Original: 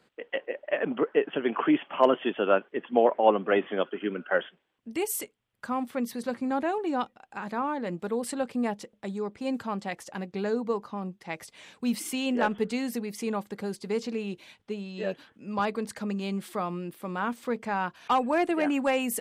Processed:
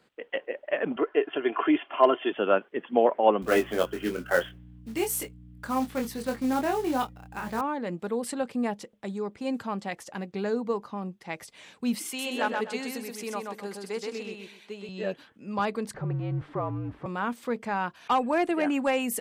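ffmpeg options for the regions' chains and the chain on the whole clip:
-filter_complex "[0:a]asettb=1/sr,asplit=3[a][b][c];[a]atrim=end=0.964[d];[b]atrim=start=0.96:end=2.32,asetpts=PTS-STARTPTS,afade=t=in:d=0.004:c=qsin,afade=t=out:st=1.356:d=0.004:c=qsin,lowpass=f=4.9k:w=0.5412,lowpass=f=4.9k:w=1.3066,equalizer=f=200:w=1.7:g=-10,aecho=1:1:2.9:0.56,atrim=end_sample=59976[e];[c]atrim=start=2.316[f];[d][e]acrossfade=d=0.004:c1=hsin:c2=qsin[g];[g][f]acrossfade=d=0.004:c1=qsin:c2=hsin,asettb=1/sr,asplit=3[h][i][j];[h]atrim=end=3.424[k];[i]atrim=start=3.42:end=7.61,asetpts=PTS-STARTPTS,afade=t=in:d=0.004:c=qsin,afade=t=out:st=4.186:d=0.004:c=qsin,acrusher=bits=4:mode=log:mix=0:aa=0.000001,aeval=exprs='val(0)+0.00501*(sin(2*PI*60*n/s)+sin(2*PI*2*60*n/s)/2+sin(2*PI*3*60*n/s)/3+sin(2*PI*4*60*n/s)/4+sin(2*PI*5*60*n/s)/5)':c=same,asplit=2[l][m];[m]adelay=23,volume=-4.5dB[n];[l][n]amix=inputs=2:normalize=0,atrim=end_sample=184779[o];[j]atrim=start=7.606[p];[k][o]acrossfade=d=0.004:c1=hsin:c2=qsin[q];[q][p]acrossfade=d=0.004:c1=qsin:c2=hsin,asettb=1/sr,asplit=3[r][s][t];[r]atrim=end=12.064[u];[s]atrim=start=12.06:end=14.89,asetpts=PTS-STARTPTS,afade=t=in:d=0.004:c=qsin,afade=t=out:st=2.826:d=0.004:c=qsin,highpass=f=560:p=1,aecho=1:1:127|254|381|508:0.668|0.167|0.0418|0.0104,atrim=end_sample=124803[v];[t]atrim=start=14.886[w];[u][v]acrossfade=d=0.004:c1=hsin:c2=qsin[x];[x][w]acrossfade=d=0.004:c1=qsin:c2=hsin,asettb=1/sr,asplit=3[y][z][aa];[y]atrim=end=15.944[ab];[z]atrim=start=15.94:end=17.06,asetpts=PTS-STARTPTS,afade=t=in:d=0.004:c=qsin,afade=t=out:st=1.116:d=0.004:c=qsin,aeval=exprs='val(0)+0.5*0.0112*sgn(val(0))':c=same,lowpass=1.3k,afreqshift=-59[ac];[aa]atrim=start=17.056[ad];[ab][ac]acrossfade=d=0.004:c1=hsin:c2=qsin[ae];[ae][ad]acrossfade=d=0.004:c1=qsin:c2=hsin"

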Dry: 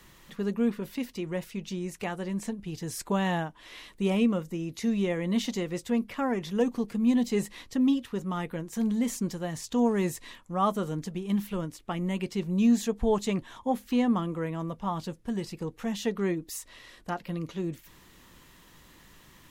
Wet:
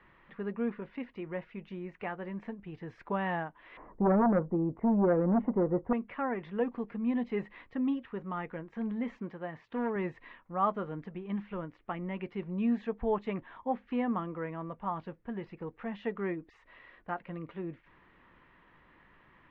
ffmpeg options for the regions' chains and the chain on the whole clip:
-filter_complex "[0:a]asettb=1/sr,asplit=3[a][b][c];[a]atrim=end=3.774[d];[b]atrim=start=3.77:end=5.93,asetpts=PTS-STARTPTS,afade=t=in:d=0.004:c=qsin,afade=t=out:st=2.156:d=0.004:c=qsin,lowpass=f=1k:w=0.5412,lowpass=f=1k:w=1.3066,aeval=exprs='0.168*sin(PI/2*2.24*val(0)/0.168)':c=same[e];[c]atrim=start=5.926[f];[d][e]acrossfade=d=0.004:c1=hsin:c2=qsin[g];[g][f]acrossfade=d=0.004:c1=qsin:c2=hsin,asettb=1/sr,asplit=3[h][i][j];[h]atrim=end=9.184[k];[i]atrim=start=9.18:end=9.96,asetpts=PTS-STARTPTS,afade=t=in:d=0.004:c=qsin,afade=t=out:st=0.776:d=0.004:c=qsin,highpass=f=160:p=1,highshelf=f=7.4k:g=-10,volume=22dB,asoftclip=hard,volume=-22dB[l];[j]atrim=start=9.956[m];[k][l]acrossfade=d=0.004:c1=hsin:c2=qsin[n];[n][m]acrossfade=d=0.004:c1=qsin:c2=hsin,lowpass=f=2.2k:w=0.5412,lowpass=f=2.2k:w=1.3066,lowshelf=f=390:g=-8.5,volume=-1dB"

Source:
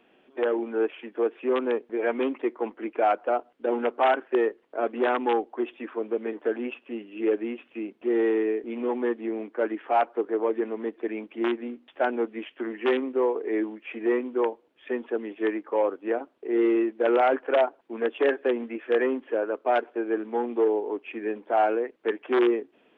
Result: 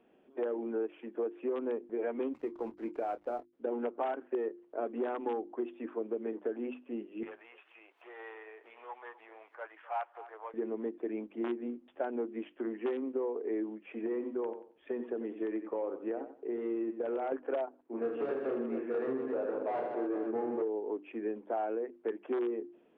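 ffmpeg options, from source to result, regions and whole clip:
-filter_complex "[0:a]asettb=1/sr,asplit=3[a][b][c];[a]atrim=end=2.334[d];[b]atrim=start=2.33:end=3.53,asetpts=PTS-STARTPTS,afade=t=in:d=0.004:c=qsin,afade=t=out:st=1.196:d=0.004:c=qsin,acompressor=threshold=-27dB:ratio=2:attack=3.2:release=140:knee=1:detection=peak,aeval=exprs='sgn(val(0))*max(abs(val(0))-0.00355,0)':c=same,asplit=2[e][f];[f]adelay=26,volume=-11.5dB[g];[e][g]amix=inputs=2:normalize=0,atrim=end_sample=52920[h];[c]atrim=start=3.526[i];[d][h]acrossfade=d=0.004:c1=hsin:c2=qsin[j];[j][i]acrossfade=d=0.004:c1=qsin:c2=hsin,asettb=1/sr,asplit=3[k][l][m];[k]atrim=end=7.234[n];[l]atrim=start=7.23:end=10.54,asetpts=PTS-STARTPTS,afade=t=in:d=0.004:c=qsin,afade=t=out:st=3.306:d=0.004:c=qsin,highpass=f=840:w=0.5412,highpass=f=840:w=1.3066,acompressor=mode=upward:threshold=-38dB:ratio=2.5:attack=3.2:release=140:knee=2.83:detection=peak,aecho=1:1:253:0.133,atrim=end_sample=145971[o];[m]atrim=start=10.536[p];[n][o]acrossfade=d=0.004:c1=hsin:c2=qsin[q];[q][p]acrossfade=d=0.004:c1=qsin:c2=hsin,asettb=1/sr,asplit=3[r][s][t];[r]atrim=end=13.894[u];[s]atrim=start=13.89:end=17.32,asetpts=PTS-STARTPTS,afade=t=in:d=0.004:c=qsin,afade=t=out:st=3.426:d=0.004:c=qsin,acompressor=threshold=-24dB:ratio=6:attack=3.2:release=140:knee=1:detection=peak,aecho=1:1:91|182|273:0.266|0.0665|0.0166,atrim=end_sample=151263[v];[t]atrim=start=17.316[w];[u][v]acrossfade=d=0.004:c1=hsin:c2=qsin[x];[x][w]acrossfade=d=0.004:c1=qsin:c2=hsin,asettb=1/sr,asplit=3[y][z][aa];[y]atrim=end=17.824[ab];[z]atrim=start=17.82:end=20.62,asetpts=PTS-STARTPTS,afade=t=in:d=0.004:c=qsin,afade=t=out:st=2.796:d=0.004:c=qsin,asoftclip=type=hard:threshold=-24.5dB,highpass=200,lowpass=2.1k,aecho=1:1:30|78|154.8|277.7|474.3:0.794|0.631|0.501|0.398|0.316,atrim=end_sample=123480[ac];[aa]atrim=start=20.616[ad];[ab][ac]acrossfade=d=0.004:c1=hsin:c2=qsin[ae];[ae][ad]acrossfade=d=0.004:c1=qsin:c2=hsin,tiltshelf=f=1.1k:g=7,bandreject=f=50:t=h:w=6,bandreject=f=100:t=h:w=6,bandreject=f=150:t=h:w=6,bandreject=f=200:t=h:w=6,bandreject=f=250:t=h:w=6,bandreject=f=300:t=h:w=6,bandreject=f=350:t=h:w=6,acompressor=threshold=-22dB:ratio=6,volume=-8.5dB"

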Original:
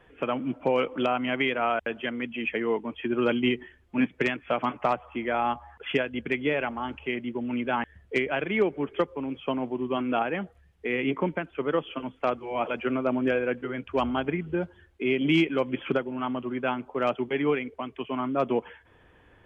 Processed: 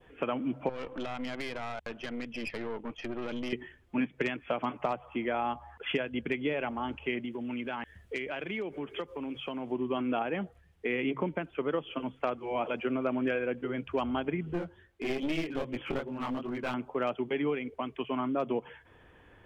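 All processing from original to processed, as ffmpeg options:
-filter_complex "[0:a]asettb=1/sr,asplit=3[a][b][c];[a]atrim=end=0.694[d];[b]atrim=start=0.69:end=3.53,asetpts=PTS-STARTPTS,afade=t=in:d=0.004:c=qsin,afade=t=out:st=2.836:d=0.004:c=qsin,acompressor=threshold=-28dB:ratio=4:attack=3.2:release=140:knee=1:detection=peak,aeval=exprs='(tanh(35.5*val(0)+0.75)-tanh(0.75))/35.5':c=same[e];[c]atrim=start=3.526[f];[d][e]acrossfade=d=0.004:c1=hsin:c2=qsin[g];[g][f]acrossfade=d=0.004:c1=qsin:c2=hsin,asettb=1/sr,asplit=3[h][i][j];[h]atrim=end=7.254[k];[i]atrim=start=7.25:end=9.72,asetpts=PTS-STARTPTS,afade=t=in:d=0.004:c=qsin,afade=t=out:st=2.466:d=0.004:c=qsin,acompressor=threshold=-34dB:ratio=4:attack=3.2:release=140:knee=1:detection=peak,highshelf=f=3k:g=8.5[l];[j]atrim=start=9.716[m];[k][l]acrossfade=d=0.004:c1=hsin:c2=qsin[n];[n][m]acrossfade=d=0.004:c1=qsin:c2=hsin,asettb=1/sr,asplit=3[o][p][q];[o]atrim=end=13.014[r];[p]atrim=start=13.01:end=13.46,asetpts=PTS-STARTPTS,afade=t=in:d=0.004:c=qsin,afade=t=out:st=0.446:d=0.004:c=qsin,equalizer=f=1.8k:w=0.81:g=7.5,bandreject=f=860:w=17[s];[q]atrim=start=13.456[t];[r][s]acrossfade=d=0.004:c1=hsin:c2=qsin[u];[u][t]acrossfade=d=0.004:c1=qsin:c2=hsin,asettb=1/sr,asplit=3[v][w][x];[v]atrim=end=14.534[y];[w]atrim=start=14.53:end=16.74,asetpts=PTS-STARTPTS,afade=t=in:d=0.004:c=qsin,afade=t=out:st=2.206:d=0.004:c=qsin,flanger=delay=16.5:depth=6.9:speed=2.5,aeval=exprs='clip(val(0),-1,0.0237)':c=same[z];[x]atrim=start=16.736[aa];[y][z]acrossfade=d=0.004:c1=hsin:c2=qsin[ab];[ab][aa]acrossfade=d=0.004:c1=qsin:c2=hsin,adynamicequalizer=threshold=0.00794:dfrequency=1600:dqfactor=1:tfrequency=1600:tqfactor=1:attack=5:release=100:ratio=0.375:range=2.5:mode=cutabove:tftype=bell,bandreject=f=67.44:t=h:w=4,bandreject=f=134.88:t=h:w=4,acompressor=threshold=-28dB:ratio=3"

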